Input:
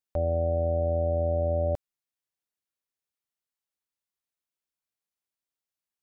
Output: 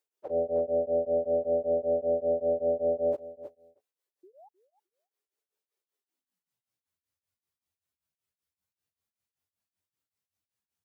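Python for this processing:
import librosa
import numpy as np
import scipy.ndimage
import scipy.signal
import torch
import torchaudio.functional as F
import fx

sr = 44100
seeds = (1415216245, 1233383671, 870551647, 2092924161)

p1 = scipy.signal.sosfilt(scipy.signal.butter(2, 62.0, 'highpass', fs=sr, output='sos'), x)
p2 = fx.low_shelf(p1, sr, hz=160.0, db=8.0)
p3 = fx.filter_sweep_highpass(p2, sr, from_hz=420.0, to_hz=80.0, start_s=3.29, end_s=3.79, q=3.6)
p4 = fx.dynamic_eq(p3, sr, hz=590.0, q=5.4, threshold_db=-37.0, ratio=4.0, max_db=-4)
p5 = fx.stretch_vocoder_free(p4, sr, factor=1.8)
p6 = fx.spec_paint(p5, sr, seeds[0], shape='rise', start_s=4.23, length_s=0.26, low_hz=340.0, high_hz=890.0, level_db=-57.0)
p7 = p6 + fx.echo_feedback(p6, sr, ms=308, feedback_pct=17, wet_db=-16.0, dry=0)
p8 = p7 * np.abs(np.cos(np.pi * 5.2 * np.arange(len(p7)) / sr))
y = p8 * librosa.db_to_amplitude(5.0)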